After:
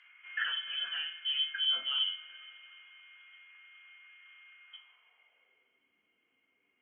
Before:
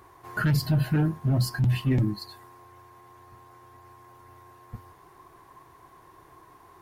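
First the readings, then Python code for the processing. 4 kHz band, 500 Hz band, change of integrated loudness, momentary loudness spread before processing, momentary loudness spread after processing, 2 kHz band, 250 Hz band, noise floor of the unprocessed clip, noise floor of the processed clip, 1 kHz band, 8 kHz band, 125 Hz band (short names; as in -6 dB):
+11.5 dB, under -25 dB, -6.0 dB, 11 LU, 18 LU, -1.5 dB, under -40 dB, -55 dBFS, -77 dBFS, -11.5 dB, under -35 dB, under -40 dB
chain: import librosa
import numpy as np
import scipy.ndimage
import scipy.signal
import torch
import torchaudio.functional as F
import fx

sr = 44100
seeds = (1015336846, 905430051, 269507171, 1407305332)

y = fx.freq_invert(x, sr, carrier_hz=3200)
y = fx.filter_sweep_bandpass(y, sr, from_hz=1500.0, to_hz=290.0, start_s=4.62, end_s=5.83, q=2.4)
y = fx.rev_double_slope(y, sr, seeds[0], early_s=0.38, late_s=4.3, knee_db=-22, drr_db=3.0)
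y = F.gain(torch.from_numpy(y), -2.0).numpy()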